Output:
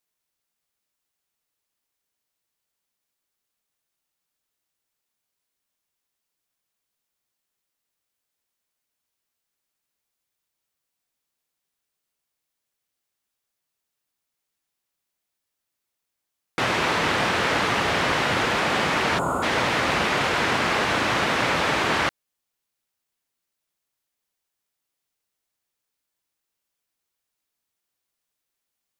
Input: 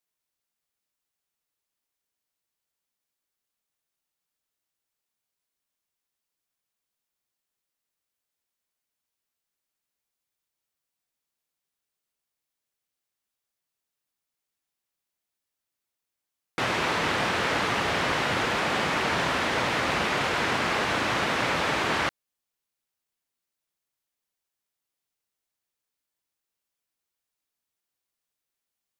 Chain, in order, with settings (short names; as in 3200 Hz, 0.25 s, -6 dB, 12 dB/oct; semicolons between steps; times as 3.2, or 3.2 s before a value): spectral gain 19.18–19.43, 1500–6500 Hz -24 dB; gain +3.5 dB